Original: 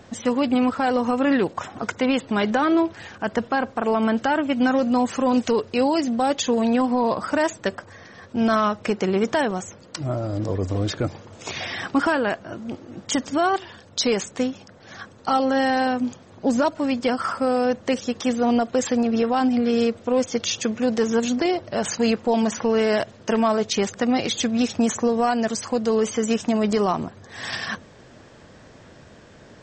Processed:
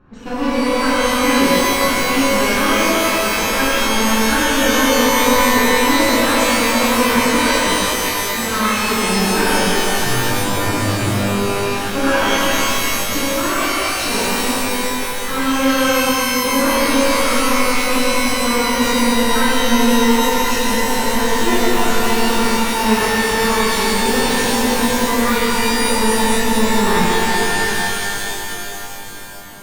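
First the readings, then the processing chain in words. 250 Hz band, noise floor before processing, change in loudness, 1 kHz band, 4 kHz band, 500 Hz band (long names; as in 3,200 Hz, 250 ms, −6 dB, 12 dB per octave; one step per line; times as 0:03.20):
+4.0 dB, −48 dBFS, +7.0 dB, +8.0 dB, +13.0 dB, +4.0 dB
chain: lower of the sound and its delayed copy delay 0.72 ms
low-pass that shuts in the quiet parts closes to 1,300 Hz, open at −21.5 dBFS
reverb with rising layers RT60 3.4 s, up +12 semitones, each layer −2 dB, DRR −11 dB
level −7 dB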